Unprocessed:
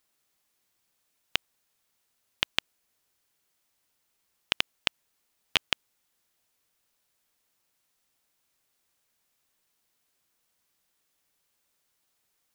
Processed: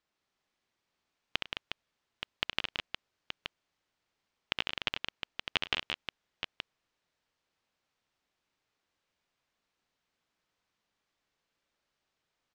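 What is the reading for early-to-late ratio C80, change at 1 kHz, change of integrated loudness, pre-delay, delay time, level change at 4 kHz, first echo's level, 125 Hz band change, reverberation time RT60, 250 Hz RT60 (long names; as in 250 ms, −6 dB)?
no reverb audible, −1.5 dB, −6.5 dB, no reverb audible, 67 ms, −3.5 dB, −6.0 dB, −1.0 dB, no reverb audible, no reverb audible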